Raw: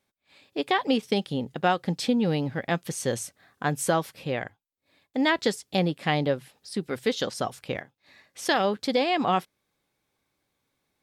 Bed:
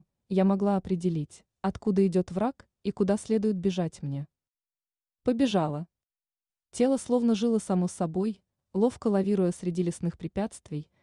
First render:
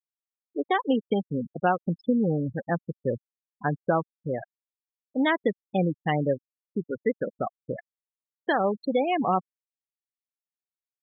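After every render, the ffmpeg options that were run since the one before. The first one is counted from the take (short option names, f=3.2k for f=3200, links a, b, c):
-af "aemphasis=mode=reproduction:type=cd,afftfilt=real='re*gte(hypot(re,im),0.1)':imag='im*gte(hypot(re,im),0.1)':win_size=1024:overlap=0.75"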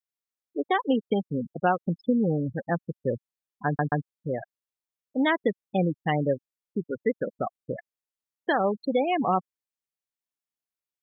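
-filter_complex "[0:a]asplit=4[a][b][c][d];[a]atrim=end=3.792[e];[b]atrim=start=3.658:end=3.792[f];[c]atrim=start=3.658:end=3.792[g];[d]atrim=start=4.048[h];[e][f]acrossfade=d=0.004:c1=hsin:c2=hsin[i];[i][g]acrossfade=d=0.004:c1=hsin:c2=hsin[j];[j][h]acrossfade=d=0.004:c1=hsin:c2=hsin"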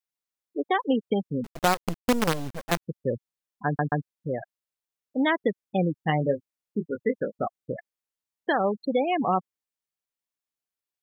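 -filter_complex "[0:a]asettb=1/sr,asplit=3[a][b][c];[a]atrim=end=1.444[d];[b]atrim=start=1.44:end=2.82,asetpts=PTS-STARTPTS,afade=t=in:d=0.004:c=qsin,afade=t=out:st=1.376:d=0.004:c=qsin,acrusher=bits=4:dc=4:mix=0:aa=0.000001[e];[c]atrim=start=2.816[f];[d][e]acrossfade=d=0.004:c1=hsin:c2=qsin[g];[g][f]acrossfade=d=0.004:c1=qsin:c2=hsin,asettb=1/sr,asplit=3[h][i][j];[h]atrim=end=5.994[k];[i]atrim=start=5.99:end=7.47,asetpts=PTS-STARTPTS,afade=t=in:d=0.004:c=qsin,afade=t=out:st=1.476:d=0.004:c=qsin,asplit=2[l][m];[m]adelay=19,volume=-7.5dB[n];[l][n]amix=inputs=2:normalize=0,atrim=end_sample=65268[o];[j]atrim=start=7.466[p];[k][o]acrossfade=d=0.004:c1=hsin:c2=qsin[q];[q][p]acrossfade=d=0.004:c1=qsin:c2=hsin"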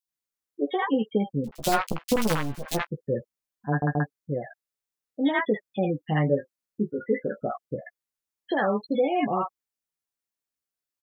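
-filter_complex "[0:a]asplit=2[a][b];[b]adelay=14,volume=-6dB[c];[a][c]amix=inputs=2:normalize=0,acrossover=split=830|3000[d][e][f];[d]adelay=30[g];[e]adelay=80[h];[g][h][f]amix=inputs=3:normalize=0"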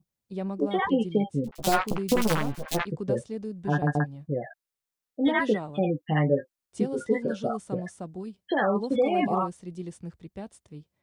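-filter_complex "[1:a]volume=-9dB[a];[0:a][a]amix=inputs=2:normalize=0"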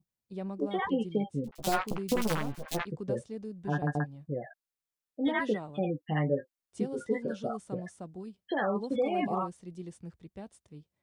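-af "volume=-5.5dB"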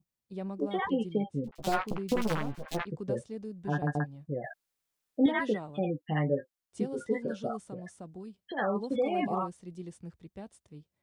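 -filter_complex "[0:a]asettb=1/sr,asplit=3[a][b][c];[a]atrim=end=1.134[d];[b]atrim=start=1.13:end=2.95,asetpts=PTS-STARTPTS,afade=t=in:d=0.004:c=qsin,afade=t=out:st=1.816:d=0.004:c=qsin,highshelf=f=6k:g=-10[e];[c]atrim=start=2.946[f];[d][e]acrossfade=d=0.004:c1=hsin:c2=qsin[g];[g][f]acrossfade=d=0.004:c1=qsin:c2=hsin,asplit=3[h][i][j];[h]afade=t=out:st=7.61:d=0.02[k];[i]acompressor=threshold=-40dB:ratio=2:attack=3.2:release=140:knee=1:detection=peak,afade=t=in:st=7.61:d=0.02,afade=t=out:st=8.57:d=0.02[l];[j]afade=t=in:st=8.57:d=0.02[m];[k][l][m]amix=inputs=3:normalize=0,asplit=3[n][o][p];[n]atrim=end=4.442[q];[o]atrim=start=4.438:end=5.262,asetpts=PTS-STARTPTS,volume=7.5dB[r];[p]atrim=start=5.258[s];[q][r]acrossfade=d=0.004:c1=hsin:c2=hsin[t];[t][s]acrossfade=d=0.004:c1=hsin:c2=hsin"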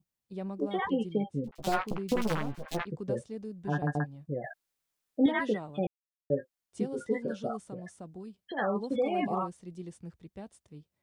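-filter_complex "[0:a]asplit=3[a][b][c];[a]atrim=end=5.87,asetpts=PTS-STARTPTS,afade=t=out:st=5.866:d=0.004:c=hsin[d];[b]atrim=start=5.87:end=6.3,asetpts=PTS-STARTPTS,volume=0[e];[c]atrim=start=6.3,asetpts=PTS-STARTPTS,afade=t=in:d=0.004:c=hsin[f];[d][e][f]concat=n=3:v=0:a=1"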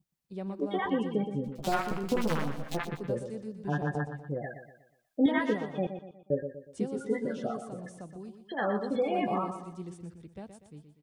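-af "aecho=1:1:121|242|363|484|605:0.355|0.145|0.0596|0.0245|0.01"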